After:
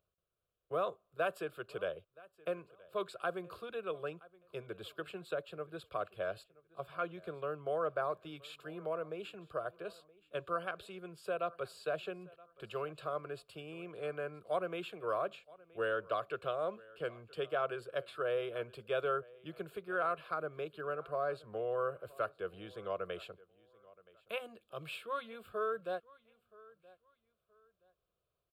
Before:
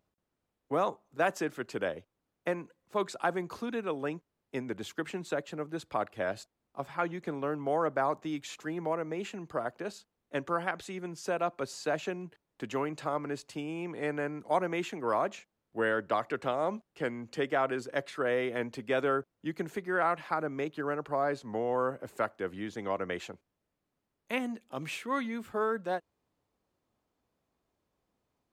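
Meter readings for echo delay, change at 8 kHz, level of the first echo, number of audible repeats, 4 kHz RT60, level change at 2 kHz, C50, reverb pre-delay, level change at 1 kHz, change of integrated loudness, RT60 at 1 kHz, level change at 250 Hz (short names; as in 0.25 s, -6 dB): 0.973 s, under -10 dB, -22.5 dB, 2, none, -7.0 dB, none, none, -6.5 dB, -6.0 dB, none, -13.0 dB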